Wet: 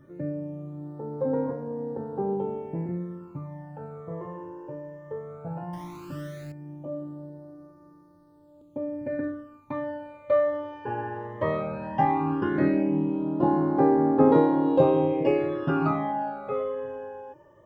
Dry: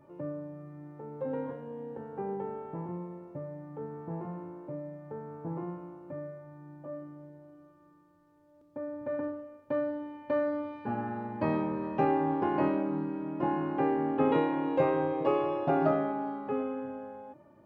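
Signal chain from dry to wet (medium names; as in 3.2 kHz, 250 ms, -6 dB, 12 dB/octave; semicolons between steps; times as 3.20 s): 5.73–6.52 s: jump at every zero crossing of -45.5 dBFS; phase shifter stages 12, 0.16 Hz, lowest notch 220–2800 Hz; trim +7.5 dB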